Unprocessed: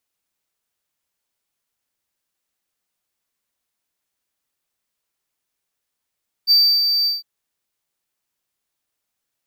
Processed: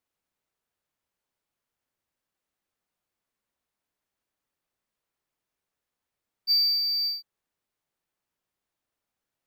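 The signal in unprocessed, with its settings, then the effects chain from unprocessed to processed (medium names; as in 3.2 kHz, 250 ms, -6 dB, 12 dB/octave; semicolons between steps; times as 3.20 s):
ADSR triangle 4.65 kHz, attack 40 ms, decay 302 ms, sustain -6 dB, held 0.59 s, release 165 ms -7.5 dBFS
treble shelf 2.5 kHz -10.5 dB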